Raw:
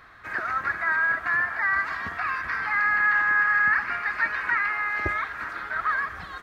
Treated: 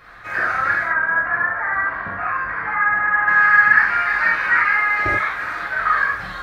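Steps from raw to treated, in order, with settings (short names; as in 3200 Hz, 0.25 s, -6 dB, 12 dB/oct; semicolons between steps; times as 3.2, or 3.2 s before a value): 0.83–3.28 LPF 1400 Hz 12 dB/oct; non-linear reverb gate 0.12 s flat, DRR -6 dB; gain +1.5 dB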